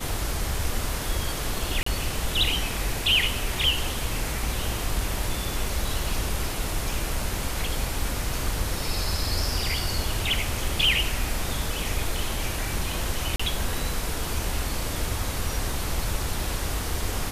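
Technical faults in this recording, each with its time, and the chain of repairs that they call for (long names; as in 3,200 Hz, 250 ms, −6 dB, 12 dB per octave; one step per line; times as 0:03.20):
0:01.83–0:01.86: drop-out 34 ms
0:13.36–0:13.39: drop-out 35 ms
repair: repair the gap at 0:01.83, 34 ms
repair the gap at 0:13.36, 35 ms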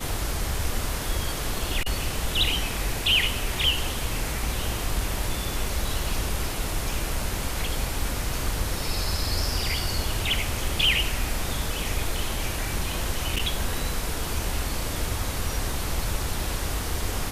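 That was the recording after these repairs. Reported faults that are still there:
none of them is left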